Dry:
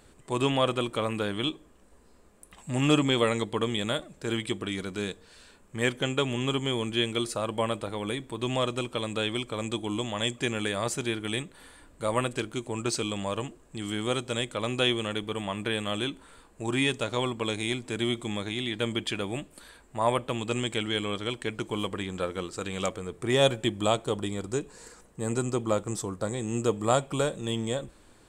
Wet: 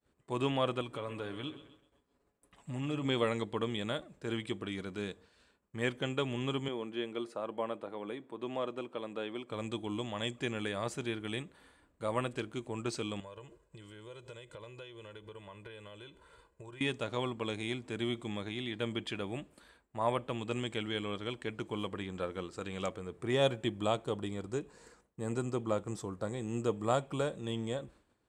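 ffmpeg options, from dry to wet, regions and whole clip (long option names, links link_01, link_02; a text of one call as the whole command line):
ffmpeg -i in.wav -filter_complex "[0:a]asettb=1/sr,asplit=3[link_01][link_02][link_03];[link_01]atrim=end=0.814[link_04];[link_02]atrim=start=0.81:end=3.05,asetpts=PTS-STARTPTS,afade=type=in:duration=0.004:curve=qsin,afade=type=out:start_time=2.236:duration=0.004:curve=qsin,aecho=1:1:7.1:0.45,atrim=end_sample=98784,acompressor=threshold=-33dB:ratio=2:attack=3.2:release=140:knee=1:detection=peak,aecho=1:1:130|260|390|520|650:0.2|0.104|0.054|0.0281|0.0146,atrim=end_sample=98784[link_05];[link_03]atrim=start=3.046[link_06];[link_04][link_05]acrossfade=duration=0.004:curve1=hsin:curve2=qsin[link_07];[link_07][link_06]acrossfade=duration=0.004:curve1=qsin:curve2=hsin,asettb=1/sr,asplit=3[link_08][link_09][link_10];[link_08]atrim=end=6.684[link_11];[link_09]atrim=start=6.68:end=9.5,asetpts=PTS-STARTPTS,afade=type=in:duration=0.004:curve=qsin,afade=type=out:start_time=2.816:duration=0.004:curve=qsin,highpass=260,highshelf=frequency=2300:gain=-11.5[link_12];[link_10]atrim=start=9.496[link_13];[link_11][link_12]acrossfade=duration=0.004:curve1=hsin:curve2=qsin[link_14];[link_14][link_13]acrossfade=duration=0.004:curve1=qsin:curve2=hsin,asettb=1/sr,asplit=3[link_15][link_16][link_17];[link_15]atrim=end=13.204[link_18];[link_16]atrim=start=13.2:end=16.81,asetpts=PTS-STARTPTS,afade=type=in:duration=0.004:curve=qsin,afade=type=out:start_time=3.606:duration=0.004:curve=qsin,acompressor=threshold=-40dB:ratio=10:attack=3.2:release=140:knee=1:detection=peak,aecho=1:1:2:0.75,atrim=end_sample=159201[link_19];[link_17]atrim=start=16.806[link_20];[link_18][link_19]acrossfade=duration=0.004:curve1=hsin:curve2=qsin[link_21];[link_21][link_20]acrossfade=duration=0.004:curve1=qsin:curve2=hsin,agate=range=-33dB:threshold=-47dB:ratio=3:detection=peak,highpass=45,highshelf=frequency=5300:gain=-10.5,volume=-6dB" out.wav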